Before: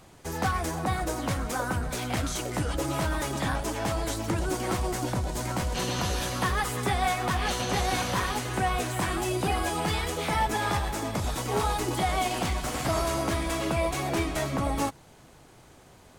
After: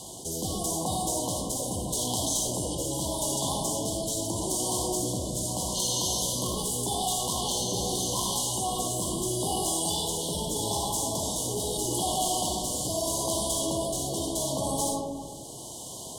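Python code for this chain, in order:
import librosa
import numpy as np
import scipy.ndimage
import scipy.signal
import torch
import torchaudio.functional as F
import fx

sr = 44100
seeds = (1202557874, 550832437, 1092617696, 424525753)

y = fx.highpass(x, sr, hz=130.0, slope=6)
y = fx.peak_eq(y, sr, hz=8800.0, db=13.5, octaves=1.9)
y = fx.cheby_harmonics(y, sr, harmonics=(2, 3, 5, 8), levels_db=(-11, -11, -22, -33), full_scale_db=-9.5)
y = fx.rotary(y, sr, hz=0.8)
y = fx.brickwall_bandstop(y, sr, low_hz=1100.0, high_hz=2900.0)
y = fx.rev_freeverb(y, sr, rt60_s=0.92, hf_ratio=0.45, predelay_ms=20, drr_db=0.0)
y = fx.env_flatten(y, sr, amount_pct=50)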